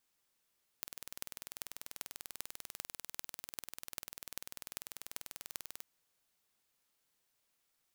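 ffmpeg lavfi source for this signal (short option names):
-f lavfi -i "aevalsrc='0.282*eq(mod(n,2172),0)*(0.5+0.5*eq(mod(n,17376),0))':d=5:s=44100"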